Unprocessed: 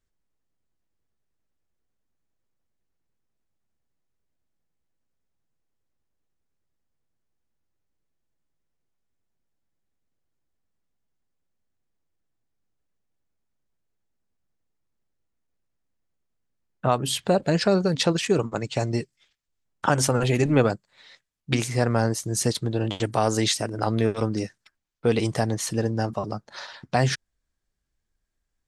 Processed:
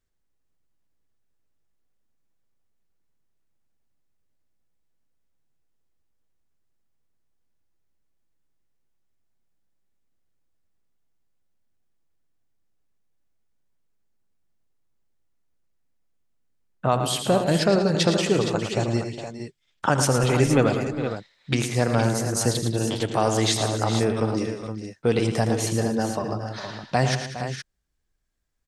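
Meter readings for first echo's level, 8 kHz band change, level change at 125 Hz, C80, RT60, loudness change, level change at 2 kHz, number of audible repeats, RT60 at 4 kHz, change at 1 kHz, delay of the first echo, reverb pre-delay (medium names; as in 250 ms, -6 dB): -13.5 dB, +1.5 dB, +1.5 dB, no reverb, no reverb, +1.0 dB, +1.5 dB, 6, no reverb, +1.5 dB, 81 ms, no reverb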